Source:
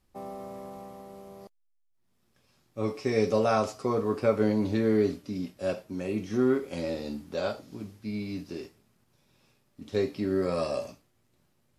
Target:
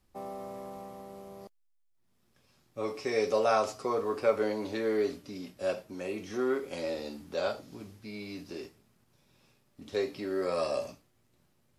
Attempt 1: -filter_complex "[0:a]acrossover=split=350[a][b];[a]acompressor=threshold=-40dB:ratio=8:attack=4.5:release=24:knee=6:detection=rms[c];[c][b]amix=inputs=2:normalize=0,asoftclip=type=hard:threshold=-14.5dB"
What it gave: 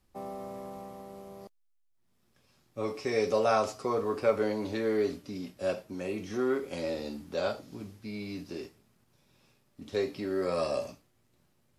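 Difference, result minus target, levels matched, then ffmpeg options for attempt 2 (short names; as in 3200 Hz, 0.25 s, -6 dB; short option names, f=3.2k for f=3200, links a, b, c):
compressor: peak gain reduction -6 dB
-filter_complex "[0:a]acrossover=split=350[a][b];[a]acompressor=threshold=-47dB:ratio=8:attack=4.5:release=24:knee=6:detection=rms[c];[c][b]amix=inputs=2:normalize=0,asoftclip=type=hard:threshold=-14.5dB"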